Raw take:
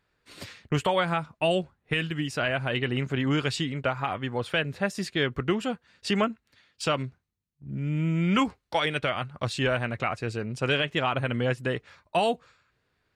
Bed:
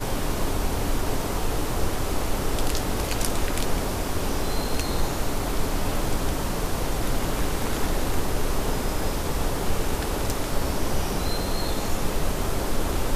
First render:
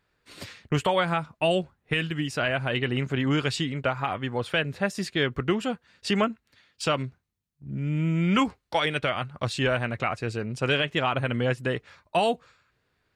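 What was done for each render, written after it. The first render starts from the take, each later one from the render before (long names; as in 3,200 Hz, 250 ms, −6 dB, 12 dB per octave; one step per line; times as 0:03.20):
level +1 dB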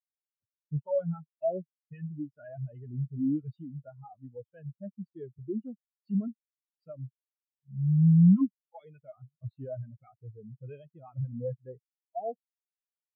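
leveller curve on the samples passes 3
every bin expanded away from the loudest bin 4 to 1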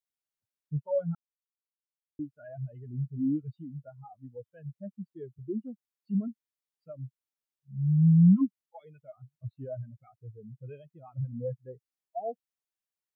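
0:01.15–0:02.19: silence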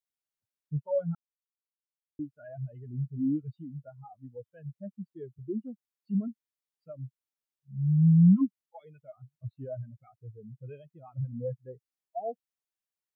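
no processing that can be heard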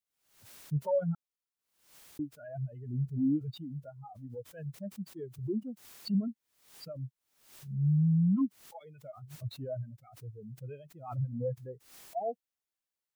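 brickwall limiter −22 dBFS, peak gain reduction 9 dB
background raised ahead of every attack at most 96 dB per second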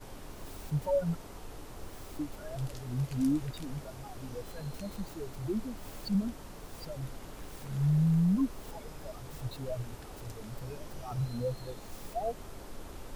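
mix in bed −20 dB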